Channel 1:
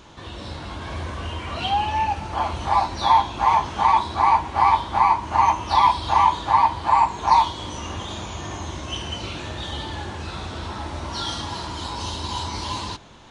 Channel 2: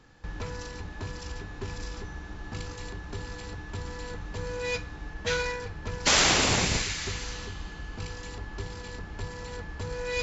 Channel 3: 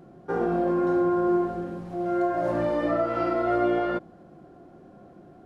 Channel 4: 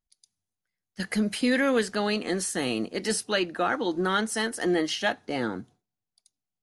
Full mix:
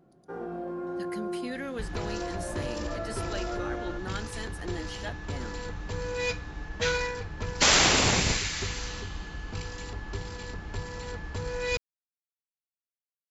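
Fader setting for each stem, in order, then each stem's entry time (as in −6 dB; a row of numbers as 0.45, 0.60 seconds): muted, +1.0 dB, −11.5 dB, −13.0 dB; muted, 1.55 s, 0.00 s, 0.00 s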